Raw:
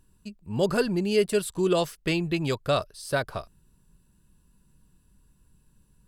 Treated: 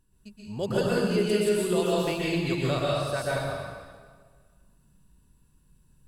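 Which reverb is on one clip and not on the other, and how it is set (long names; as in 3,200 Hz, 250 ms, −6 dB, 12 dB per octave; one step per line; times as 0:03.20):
dense smooth reverb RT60 1.6 s, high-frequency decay 0.85×, pre-delay 110 ms, DRR −6 dB
level −7 dB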